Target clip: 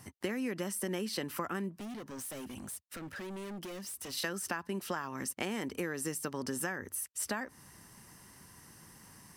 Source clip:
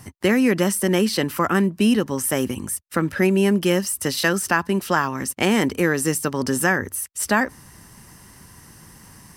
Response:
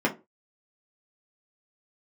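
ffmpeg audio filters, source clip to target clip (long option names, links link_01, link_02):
-filter_complex "[0:a]lowshelf=frequency=96:gain=-8.5,acompressor=threshold=-24dB:ratio=6,asettb=1/sr,asplit=3[link_01][link_02][link_03];[link_01]atrim=end=1.764[link_04];[link_02]atrim=start=1.76:end=4.13,asetpts=PTS-STARTPTS,afade=type=in:duration=0.004:curve=qsin,afade=type=out:start_time=2.366:duration=0.004:curve=qsin,volume=32dB,asoftclip=hard,volume=-32dB[link_05];[link_03]atrim=start=4.126[link_06];[link_04][link_05]acrossfade=duration=0.004:curve1=hsin:curve2=qsin[link_07];[link_07][link_06]acrossfade=duration=0.004:curve1=qsin:curve2=hsin,volume=-8.5dB"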